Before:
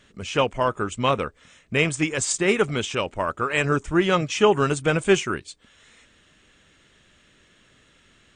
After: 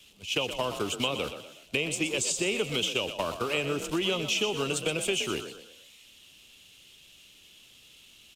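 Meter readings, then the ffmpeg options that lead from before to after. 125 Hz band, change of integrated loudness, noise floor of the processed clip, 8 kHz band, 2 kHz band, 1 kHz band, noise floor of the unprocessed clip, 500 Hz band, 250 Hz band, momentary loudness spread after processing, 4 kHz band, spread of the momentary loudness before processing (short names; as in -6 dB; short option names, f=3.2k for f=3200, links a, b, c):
-11.0 dB, -6.5 dB, -56 dBFS, -2.5 dB, -6.5 dB, -11.5 dB, -59 dBFS, -8.5 dB, -8.5 dB, 6 LU, +1.0 dB, 8 LU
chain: -filter_complex "[0:a]aeval=exprs='val(0)+0.5*0.0237*sgn(val(0))':c=same,agate=range=-26dB:threshold=-27dB:ratio=16:detection=peak,acrossover=split=130|270|1000[a][b][c][d];[a]acompressor=threshold=-47dB:ratio=4[e];[b]acompressor=threshold=-40dB:ratio=4[f];[c]acompressor=threshold=-25dB:ratio=4[g];[d]acompressor=threshold=-35dB:ratio=4[h];[e][f][g][h]amix=inputs=4:normalize=0,highshelf=f=2.2k:t=q:w=3:g=8,acompressor=threshold=-27dB:ratio=2.5,asplit=2[i][j];[j]asplit=4[k][l][m][n];[k]adelay=122,afreqshift=39,volume=-10dB[o];[l]adelay=244,afreqshift=78,volume=-17.7dB[p];[m]adelay=366,afreqshift=117,volume=-25.5dB[q];[n]adelay=488,afreqshift=156,volume=-33.2dB[r];[o][p][q][r]amix=inputs=4:normalize=0[s];[i][s]amix=inputs=2:normalize=0,aresample=32000,aresample=44100"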